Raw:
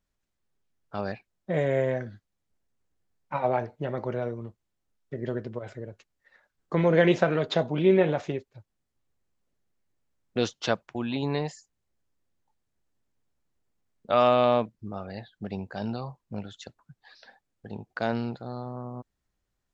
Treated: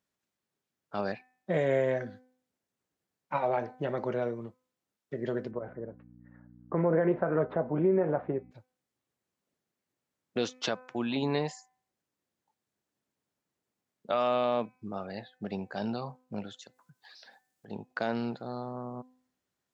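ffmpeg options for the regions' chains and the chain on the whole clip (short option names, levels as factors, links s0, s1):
-filter_complex "[0:a]asettb=1/sr,asplit=3[s0][s1][s2];[s0]atrim=end=5.514[s3];[s1]atrim=start=5.51:end=8.51,asetpts=PTS-STARTPTS,afade=t=in:d=0.004:c=qsin,afade=t=out:st=2.996:d=0.004:c=qsin,lowpass=f=1500:w=0.5412,lowpass=f=1500:w=1.3066,aeval=exprs='val(0)+0.00501*(sin(2*PI*60*n/s)+sin(2*PI*2*60*n/s)/2+sin(2*PI*3*60*n/s)/3+sin(2*PI*4*60*n/s)/4+sin(2*PI*5*60*n/s)/5)':c=same[s4];[s2]atrim=start=8.506[s5];[s3][s4]acrossfade=d=0.004:c1=hsin:c2=qsin[s6];[s6][s5]acrossfade=d=0.004:c1=qsin:c2=hsin,asettb=1/sr,asplit=3[s7][s8][s9];[s7]atrim=end=16.594[s10];[s8]atrim=start=16.59:end=17.68,asetpts=PTS-STARTPTS,afade=t=in:d=0.004:c=qsin,afade=t=out:st=1.086:d=0.004:c=qsin,highshelf=f=4500:g=11.5,acompressor=threshold=0.00282:ratio=2.5:attack=3.2:release=140:knee=1:detection=peak[s11];[s9]atrim=start=17.676[s12];[s10][s11]acrossfade=d=0.004:c1=hsin:c2=qsin[s13];[s13][s12]acrossfade=d=0.004:c1=qsin:c2=hsin,highpass=160,bandreject=f=254:t=h:w=4,bandreject=f=508:t=h:w=4,bandreject=f=762:t=h:w=4,bandreject=f=1016:t=h:w=4,bandreject=f=1270:t=h:w=4,bandreject=f=1524:t=h:w=4,bandreject=f=1778:t=h:w=4,bandreject=f=2032:t=h:w=4,bandreject=f=2286:t=h:w=4,bandreject=f=2540:t=h:w=4,alimiter=limit=0.141:level=0:latency=1:release=156"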